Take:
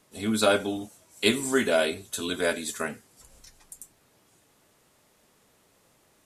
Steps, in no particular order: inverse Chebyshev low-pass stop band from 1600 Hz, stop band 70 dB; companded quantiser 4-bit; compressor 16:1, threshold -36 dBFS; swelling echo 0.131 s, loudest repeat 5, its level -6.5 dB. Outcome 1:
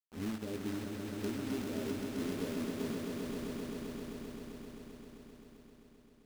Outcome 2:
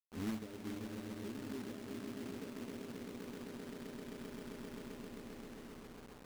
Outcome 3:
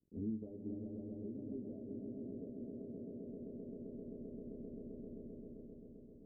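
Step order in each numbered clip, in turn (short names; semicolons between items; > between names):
inverse Chebyshev low-pass > compressor > companded quantiser > swelling echo; swelling echo > compressor > inverse Chebyshev low-pass > companded quantiser; swelling echo > compressor > companded quantiser > inverse Chebyshev low-pass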